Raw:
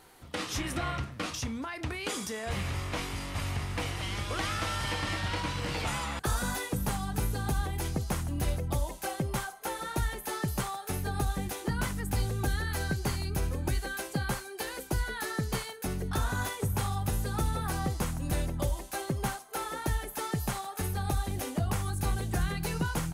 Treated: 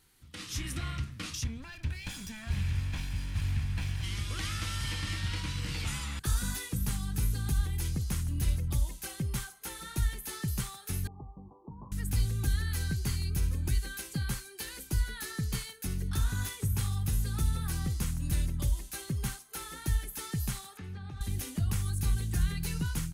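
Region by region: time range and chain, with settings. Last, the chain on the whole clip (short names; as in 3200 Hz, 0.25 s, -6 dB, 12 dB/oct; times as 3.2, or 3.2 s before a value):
1.44–4.04 minimum comb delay 1.2 ms + tone controls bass +3 dB, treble -7 dB
11.07–11.92 delta modulation 64 kbps, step -38 dBFS + Chebyshev low-pass 1100 Hz, order 8 + tilt +4.5 dB/oct
20.77–21.21 BPF 130–2600 Hz + compressor 3:1, threshold -36 dBFS
whole clip: passive tone stack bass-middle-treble 6-0-2; AGC gain up to 6 dB; gain +8.5 dB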